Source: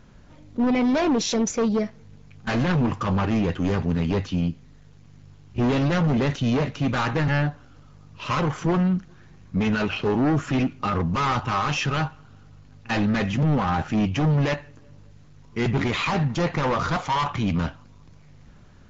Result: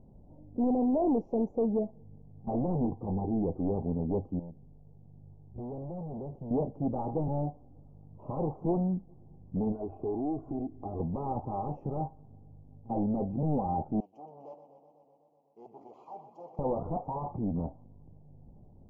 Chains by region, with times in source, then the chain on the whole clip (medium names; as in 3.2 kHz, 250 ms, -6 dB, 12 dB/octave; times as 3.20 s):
2.85–3.43 s: inverse Chebyshev low-pass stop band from 2.3 kHz, stop band 50 dB + peaking EQ 580 Hz -12 dB 0.22 oct
4.39–6.51 s: hard clipper -25 dBFS + compression 3:1, threshold -35 dBFS + peaking EQ 280 Hz -6.5 dB 0.26 oct
9.72–11.00 s: comb 2.8 ms, depth 59% + compression 2:1, threshold -31 dBFS
14.00–16.59 s: high-pass 1.3 kHz + resonant high shelf 2.6 kHz +12 dB, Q 3 + modulated delay 125 ms, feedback 77%, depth 105 cents, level -11 dB
whole clip: elliptic low-pass 810 Hz, stop band 50 dB; dynamic bell 120 Hz, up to -7 dB, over -36 dBFS, Q 0.79; trim -3.5 dB